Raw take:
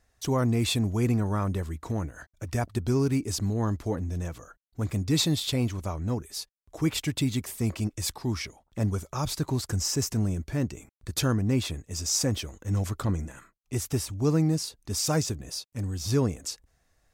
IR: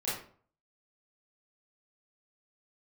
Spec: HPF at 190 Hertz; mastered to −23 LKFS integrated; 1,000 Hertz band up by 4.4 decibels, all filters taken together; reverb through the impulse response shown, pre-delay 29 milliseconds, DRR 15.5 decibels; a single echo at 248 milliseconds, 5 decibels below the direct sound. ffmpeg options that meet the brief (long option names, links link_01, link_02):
-filter_complex "[0:a]highpass=190,equalizer=frequency=1000:width_type=o:gain=5.5,aecho=1:1:248:0.562,asplit=2[link_01][link_02];[1:a]atrim=start_sample=2205,adelay=29[link_03];[link_02][link_03]afir=irnorm=-1:irlink=0,volume=-21dB[link_04];[link_01][link_04]amix=inputs=2:normalize=0,volume=6.5dB"